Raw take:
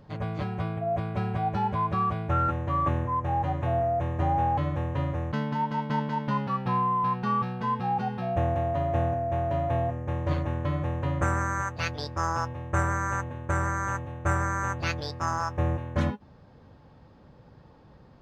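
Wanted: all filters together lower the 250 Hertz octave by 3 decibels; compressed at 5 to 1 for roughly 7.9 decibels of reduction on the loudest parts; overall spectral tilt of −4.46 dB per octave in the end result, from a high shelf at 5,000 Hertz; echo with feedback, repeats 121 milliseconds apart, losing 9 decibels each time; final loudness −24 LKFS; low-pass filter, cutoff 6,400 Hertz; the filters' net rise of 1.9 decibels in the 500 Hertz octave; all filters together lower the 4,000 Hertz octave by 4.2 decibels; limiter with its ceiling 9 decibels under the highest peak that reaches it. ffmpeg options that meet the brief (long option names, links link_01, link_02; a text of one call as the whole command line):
ffmpeg -i in.wav -af "lowpass=6400,equalizer=frequency=250:width_type=o:gain=-6,equalizer=frequency=500:width_type=o:gain=4,equalizer=frequency=4000:width_type=o:gain=-7.5,highshelf=frequency=5000:gain=5,acompressor=threshold=-30dB:ratio=5,alimiter=level_in=4.5dB:limit=-24dB:level=0:latency=1,volume=-4.5dB,aecho=1:1:121|242|363|484:0.355|0.124|0.0435|0.0152,volume=12.5dB" out.wav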